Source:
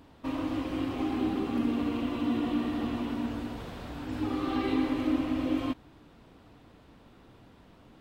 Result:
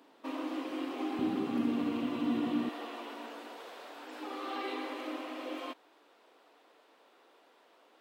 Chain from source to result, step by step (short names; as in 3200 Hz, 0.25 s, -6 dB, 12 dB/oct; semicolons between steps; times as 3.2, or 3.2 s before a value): HPF 290 Hz 24 dB/oct, from 1.19 s 130 Hz, from 2.69 s 410 Hz; gain -2.5 dB